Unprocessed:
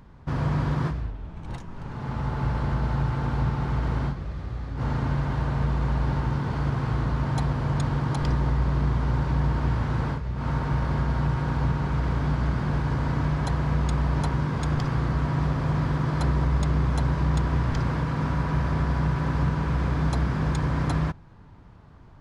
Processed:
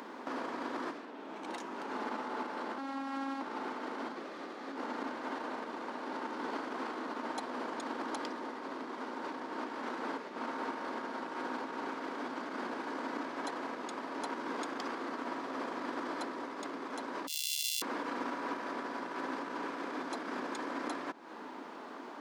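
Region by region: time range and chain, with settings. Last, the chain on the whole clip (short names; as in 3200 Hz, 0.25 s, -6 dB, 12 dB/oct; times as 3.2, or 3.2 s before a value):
2.78–3.41 bell 410 Hz -13 dB 0.51 oct + robotiser 272 Hz
17.27–17.82 sample sorter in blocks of 64 samples + steep high-pass 2900 Hz 48 dB/oct
whole clip: limiter -24 dBFS; compressor, threshold -41 dBFS; steep high-pass 250 Hz 48 dB/oct; gain +12 dB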